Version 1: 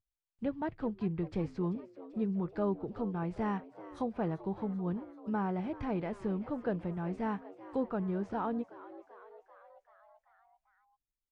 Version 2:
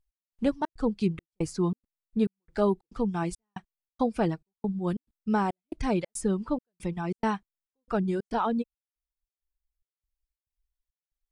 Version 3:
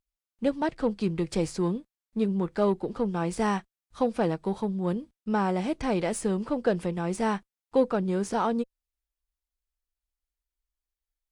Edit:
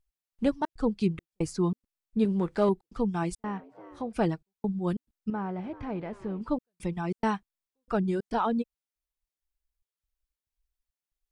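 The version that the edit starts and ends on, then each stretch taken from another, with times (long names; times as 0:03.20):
2
0:02.25–0:02.69: punch in from 3
0:03.44–0:04.13: punch in from 1
0:05.30–0:06.41: punch in from 1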